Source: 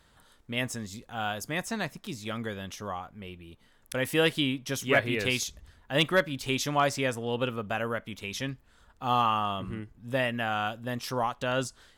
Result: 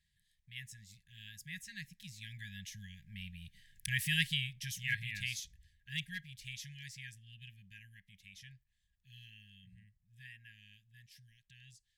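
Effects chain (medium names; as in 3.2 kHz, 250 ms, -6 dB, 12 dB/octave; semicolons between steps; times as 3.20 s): Doppler pass-by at 3.59 s, 7 m/s, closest 3.5 m; brick-wall FIR band-stop 200–1600 Hz; trim +1 dB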